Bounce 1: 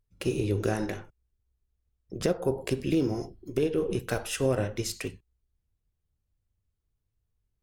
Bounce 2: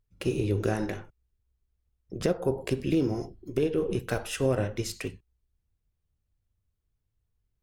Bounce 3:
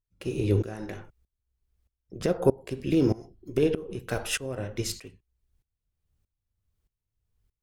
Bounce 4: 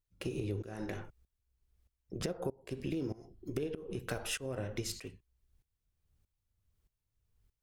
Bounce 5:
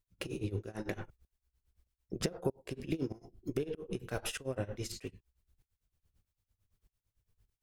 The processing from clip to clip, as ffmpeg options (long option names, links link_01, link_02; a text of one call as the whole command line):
ffmpeg -i in.wav -af "bass=frequency=250:gain=1,treble=frequency=4000:gain=-3" out.wav
ffmpeg -i in.wav -af "aeval=exprs='val(0)*pow(10,-20*if(lt(mod(-1.6*n/s,1),2*abs(-1.6)/1000),1-mod(-1.6*n/s,1)/(2*abs(-1.6)/1000),(mod(-1.6*n/s,1)-2*abs(-1.6)/1000)/(1-2*abs(-1.6)/1000))/20)':channel_layout=same,volume=7dB" out.wav
ffmpeg -i in.wav -af "acompressor=threshold=-34dB:ratio=8" out.wav
ffmpeg -i in.wav -af "tremolo=f=8.9:d=0.91,volume=4.5dB" out.wav